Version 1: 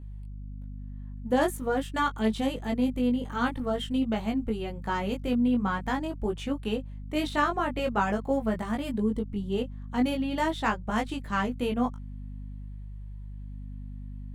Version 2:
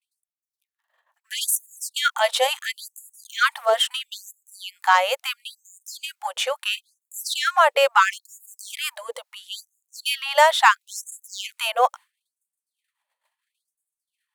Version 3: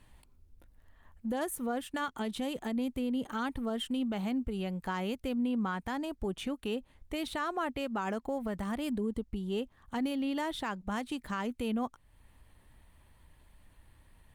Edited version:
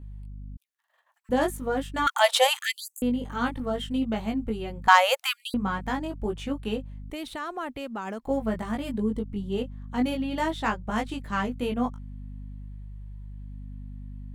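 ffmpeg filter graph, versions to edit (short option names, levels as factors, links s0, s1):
-filter_complex "[1:a]asplit=3[s0][s1][s2];[0:a]asplit=5[s3][s4][s5][s6][s7];[s3]atrim=end=0.572[s8];[s0]atrim=start=0.568:end=1.292[s9];[s4]atrim=start=1.288:end=2.072[s10];[s1]atrim=start=2.068:end=3.022[s11];[s5]atrim=start=3.018:end=4.882[s12];[s2]atrim=start=4.878:end=5.542[s13];[s6]atrim=start=5.538:end=7.102[s14];[2:a]atrim=start=7.098:end=8.272[s15];[s7]atrim=start=8.268[s16];[s8][s9]acrossfade=d=0.004:c1=hsin:c2=hsin[s17];[s17][s10]acrossfade=d=0.004:c1=hsin:c2=hsin[s18];[s18][s11]acrossfade=d=0.004:c1=hsin:c2=hsin[s19];[s19][s12]acrossfade=d=0.004:c1=hsin:c2=hsin[s20];[s20][s13]acrossfade=d=0.004:c1=hsin:c2=hsin[s21];[s21][s14]acrossfade=d=0.004:c1=hsin:c2=hsin[s22];[s22][s15]acrossfade=d=0.004:c1=hsin:c2=hsin[s23];[s23][s16]acrossfade=d=0.004:c1=hsin:c2=hsin"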